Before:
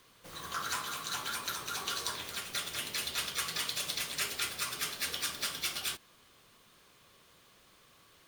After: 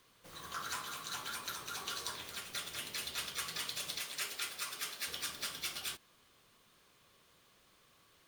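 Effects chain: 3.99–5.08 s: bass shelf 210 Hz -11.5 dB; trim -5 dB

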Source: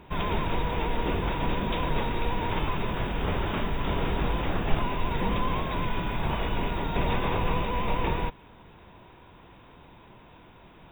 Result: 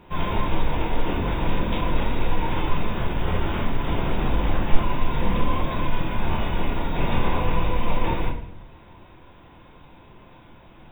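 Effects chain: simulated room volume 110 m³, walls mixed, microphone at 0.84 m; trim -1.5 dB

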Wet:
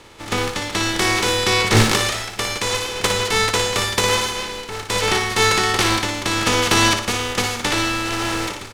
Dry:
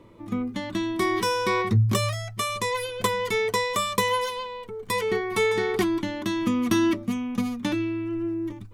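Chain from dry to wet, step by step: spectral contrast reduction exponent 0.3; distance through air 69 m; comb 2.3 ms, depth 30%; flutter echo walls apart 10 m, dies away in 0.51 s; trim +7.5 dB

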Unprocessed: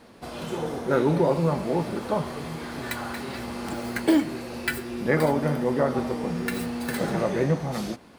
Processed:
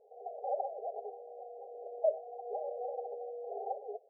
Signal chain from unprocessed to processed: flange 0.4 Hz, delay 4.6 ms, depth 2.8 ms, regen +65%; FFT band-pass 200–410 Hz; speed mistake 7.5 ips tape played at 15 ips; trim -5 dB

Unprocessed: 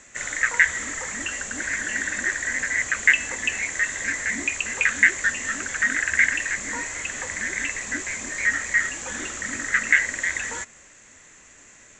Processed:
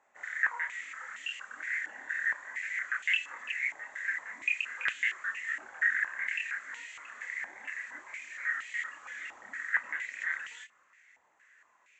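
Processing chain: chorus voices 4, 1.1 Hz, delay 28 ms, depth 3.6 ms; step-sequenced band-pass 4.3 Hz 840–2900 Hz

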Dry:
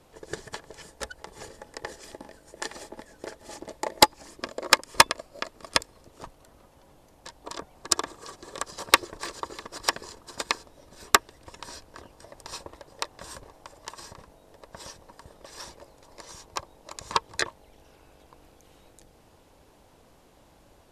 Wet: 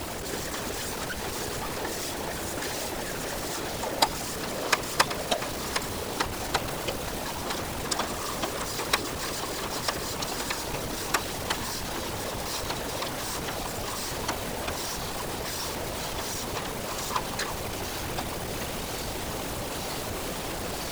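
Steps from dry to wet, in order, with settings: jump at every zero crossing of -20.5 dBFS; whisper effect; ever faster or slower copies 247 ms, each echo -4 st, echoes 3, each echo -6 dB; trim -8 dB

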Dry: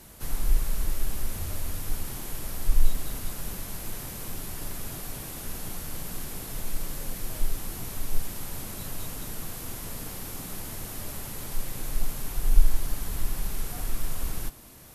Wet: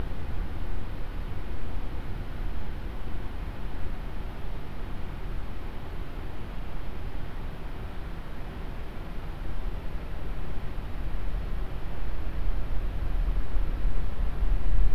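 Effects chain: full-wave rectifier; Paulstretch 29×, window 1.00 s, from 2.02 s; distance through air 390 m; trim +3 dB

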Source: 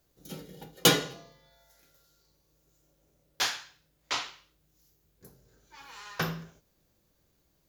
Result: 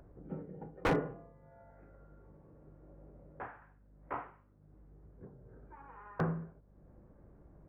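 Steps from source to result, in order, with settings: upward compressor, threshold -45 dBFS; Gaussian low-pass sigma 6.8 samples; hum 50 Hz, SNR 24 dB; wavefolder -24 dBFS; 1.11–3.62 s: three bands compressed up and down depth 40%; trim +1 dB

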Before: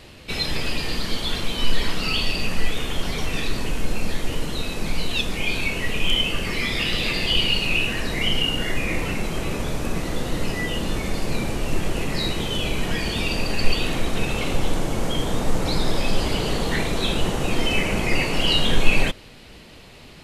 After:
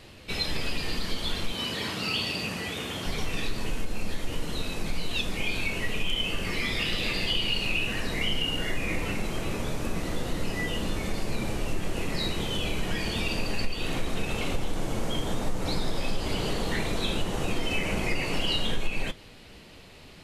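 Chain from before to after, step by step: 1.52–3.06 s: high-pass 82 Hz 24 dB/octave; compression 5:1, threshold -18 dBFS, peak gain reduction 11.5 dB; 13.67–14.42 s: word length cut 12-bit, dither none; flange 0.53 Hz, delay 9 ms, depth 2.2 ms, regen -65%

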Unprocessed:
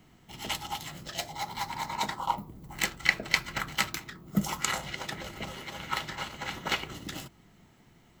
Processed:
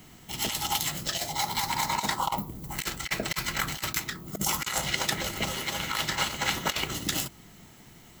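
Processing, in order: treble shelf 4.6 kHz +11.5 dB; compressor with a negative ratio -31 dBFS, ratio -0.5; trim +3.5 dB

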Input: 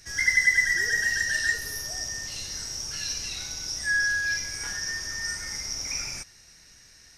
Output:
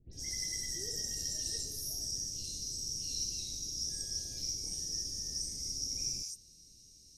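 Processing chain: dynamic bell 820 Hz, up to +8 dB, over -44 dBFS, Q 0.97; Chebyshev band-stop 330–5600 Hz, order 2; phase dispersion highs, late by 137 ms, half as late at 2.5 kHz; trim -3.5 dB

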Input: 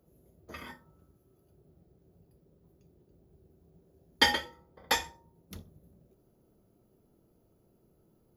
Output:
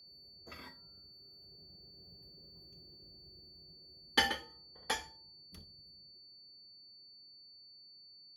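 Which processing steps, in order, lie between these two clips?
Doppler pass-by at 2.50 s, 16 m/s, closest 15 m; whistle 4.5 kHz -56 dBFS; trim +1 dB

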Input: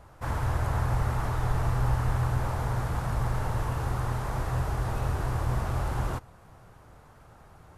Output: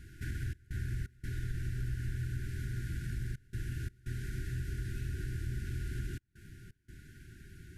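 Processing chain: compression 2.5:1, threshold -41 dBFS, peak gain reduction 13.5 dB; trance gate "xxx.xx.xxxxxxxxx" 85 bpm -24 dB; brick-wall FIR band-stop 410–1400 Hz; trim +2.5 dB

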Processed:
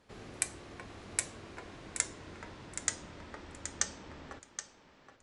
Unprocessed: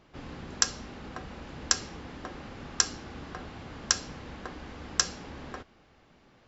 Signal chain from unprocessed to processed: gliding tape speed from 150% -> 98%; thinning echo 774 ms, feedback 17%, high-pass 430 Hz, level -9.5 dB; trim -6.5 dB

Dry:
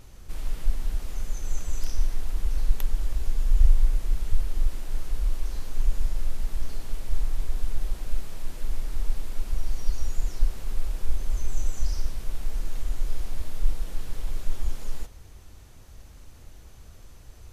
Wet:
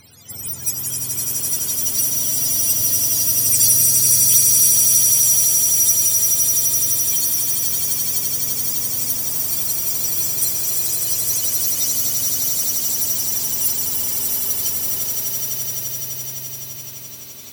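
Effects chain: spectrum inverted on a logarithmic axis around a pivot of 500 Hz; echo with a slow build-up 85 ms, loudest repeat 8, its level -6.5 dB; trim +5.5 dB

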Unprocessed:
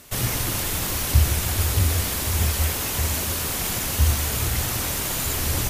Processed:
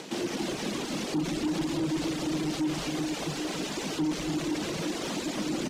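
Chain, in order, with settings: upward compressor, threshold -27 dBFS; ring modulator 230 Hz; high-pass 190 Hz 24 dB/octave; peaking EQ 1.5 kHz -6.5 dB 1.9 oct; frequency-shifting echo 89 ms, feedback 60%, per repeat -130 Hz, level -21.5 dB; peak limiter -18.5 dBFS, peak gain reduction 9.5 dB; distance through air 130 m; loudspeakers at several distances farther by 21 m -11 dB, 95 m -3 dB; saturation -26.5 dBFS, distortion -15 dB; reverb removal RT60 0.73 s; trim +4.5 dB

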